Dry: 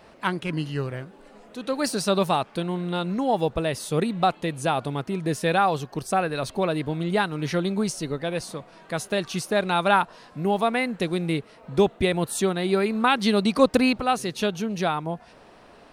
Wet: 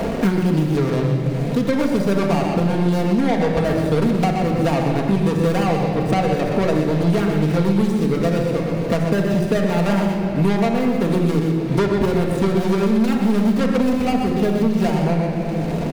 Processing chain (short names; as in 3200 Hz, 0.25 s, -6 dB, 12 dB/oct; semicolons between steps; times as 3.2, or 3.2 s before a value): median filter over 41 samples; echo 0.123 s -9 dB; soft clip -24 dBFS, distortion -9 dB; shoebox room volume 1800 m³, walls mixed, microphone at 1.7 m; three-band squash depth 100%; gain +7.5 dB